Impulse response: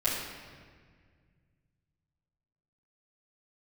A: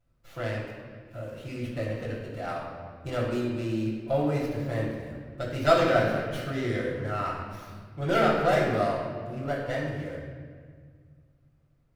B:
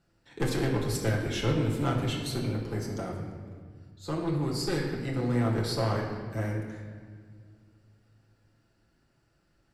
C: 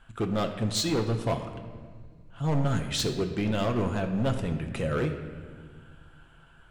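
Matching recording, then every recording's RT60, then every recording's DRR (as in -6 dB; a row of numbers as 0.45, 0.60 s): A; 1.8, 1.8, 1.9 s; -11.0, -3.0, 4.5 dB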